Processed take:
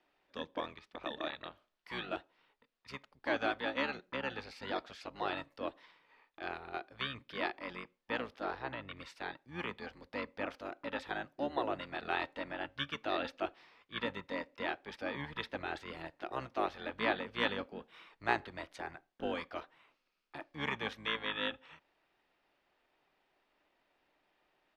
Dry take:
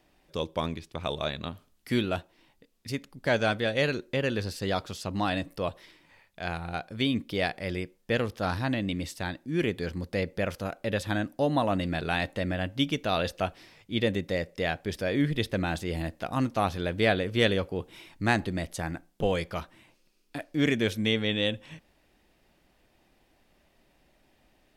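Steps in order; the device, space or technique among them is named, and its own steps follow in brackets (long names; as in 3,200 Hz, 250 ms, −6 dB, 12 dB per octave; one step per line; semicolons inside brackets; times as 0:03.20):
three-way crossover with the lows and the highs turned down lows −20 dB, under 510 Hz, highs −19 dB, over 4,600 Hz
0:08.43–0:08.97: low-pass filter 2,700 Hz 6 dB per octave
octave pedal (pitch-shifted copies added −12 semitones −3 dB)
level −7 dB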